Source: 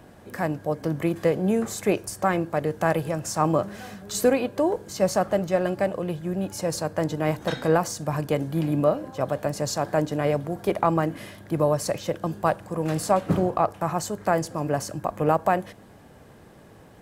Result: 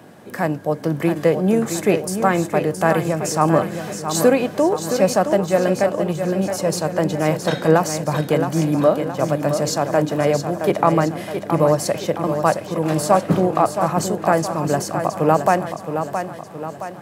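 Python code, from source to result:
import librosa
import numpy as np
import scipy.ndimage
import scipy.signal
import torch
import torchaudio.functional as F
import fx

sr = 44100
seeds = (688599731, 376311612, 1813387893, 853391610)

p1 = scipy.signal.sosfilt(scipy.signal.butter(4, 120.0, 'highpass', fs=sr, output='sos'), x)
p2 = p1 + fx.echo_feedback(p1, sr, ms=669, feedback_pct=50, wet_db=-8, dry=0)
y = p2 * 10.0 ** (5.5 / 20.0)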